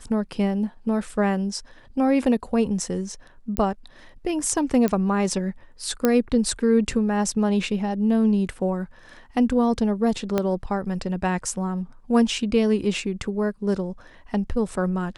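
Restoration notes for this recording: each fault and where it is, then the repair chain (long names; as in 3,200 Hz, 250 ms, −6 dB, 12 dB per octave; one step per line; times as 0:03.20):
0:03.57: click −9 dBFS
0:04.88: click −11 dBFS
0:06.05: click −6 dBFS
0:10.38: click −9 dBFS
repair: click removal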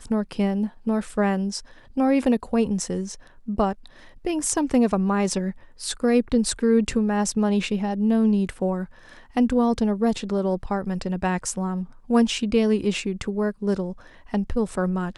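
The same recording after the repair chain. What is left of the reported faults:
0:10.38: click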